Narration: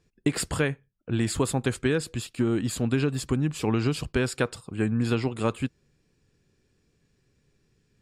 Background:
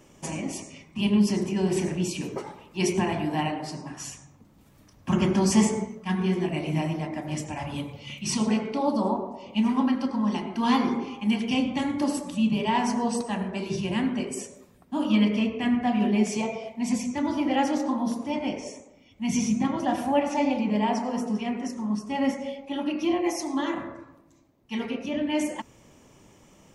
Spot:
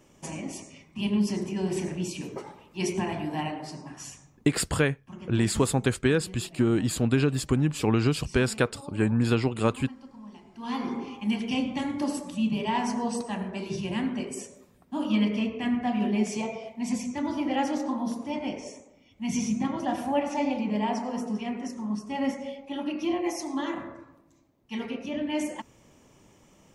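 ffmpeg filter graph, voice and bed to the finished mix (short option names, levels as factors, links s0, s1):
-filter_complex "[0:a]adelay=4200,volume=1.19[s0];[1:a]volume=4.47,afade=t=out:st=4.17:d=0.61:silence=0.158489,afade=t=in:st=10.52:d=0.56:silence=0.141254[s1];[s0][s1]amix=inputs=2:normalize=0"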